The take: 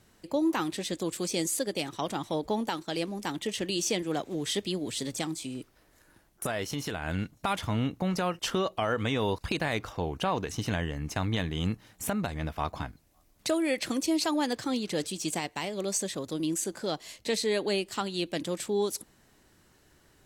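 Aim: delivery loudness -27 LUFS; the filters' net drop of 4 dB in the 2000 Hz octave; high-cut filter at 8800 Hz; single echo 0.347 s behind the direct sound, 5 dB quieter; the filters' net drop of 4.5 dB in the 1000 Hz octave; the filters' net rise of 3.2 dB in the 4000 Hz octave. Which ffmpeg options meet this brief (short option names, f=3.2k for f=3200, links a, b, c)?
-af "lowpass=8.8k,equalizer=f=1k:t=o:g=-5,equalizer=f=2k:t=o:g=-5.5,equalizer=f=4k:t=o:g=6,aecho=1:1:347:0.562,volume=3.5dB"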